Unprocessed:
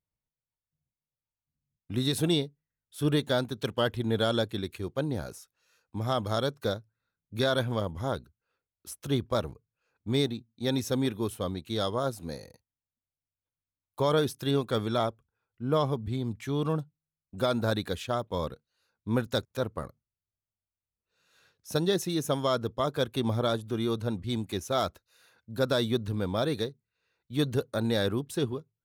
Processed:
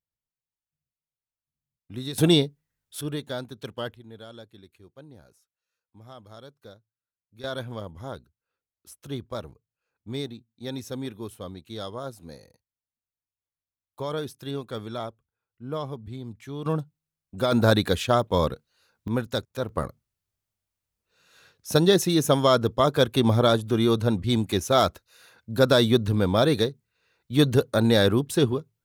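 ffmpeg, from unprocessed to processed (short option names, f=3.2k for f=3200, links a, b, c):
-af "asetnsamples=n=441:p=0,asendcmd='2.18 volume volume 7.5dB;3.01 volume volume -5.5dB;3.94 volume volume -17dB;7.44 volume volume -5.5dB;16.66 volume volume 3dB;17.52 volume volume 9dB;19.08 volume volume 1dB;19.69 volume volume 8dB',volume=-5.5dB"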